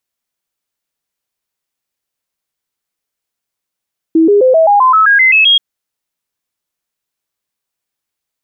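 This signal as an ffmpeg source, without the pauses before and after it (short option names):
-f lavfi -i "aevalsrc='0.596*clip(min(mod(t,0.13),0.13-mod(t,0.13))/0.005,0,1)*sin(2*PI*324*pow(2,floor(t/0.13)/3)*mod(t,0.13))':d=1.43:s=44100"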